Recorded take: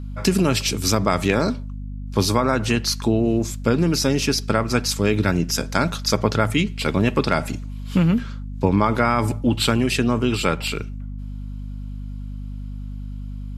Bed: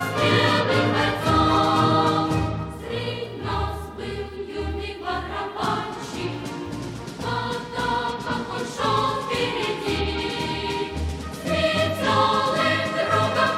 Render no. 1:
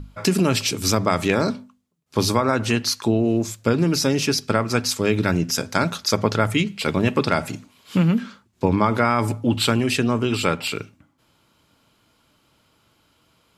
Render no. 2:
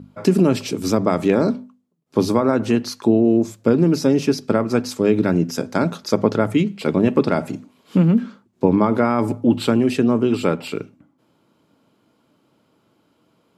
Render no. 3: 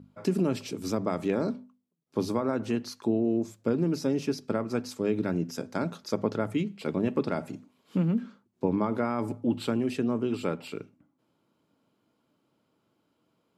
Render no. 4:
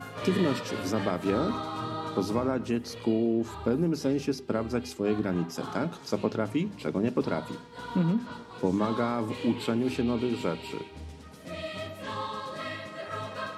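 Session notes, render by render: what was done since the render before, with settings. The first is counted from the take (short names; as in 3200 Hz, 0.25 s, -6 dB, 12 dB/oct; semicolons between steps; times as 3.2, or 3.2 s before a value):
notches 50/100/150/200/250 Hz
HPF 210 Hz 12 dB/oct; tilt shelf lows +8.5 dB, about 850 Hz
gain -11 dB
add bed -15.5 dB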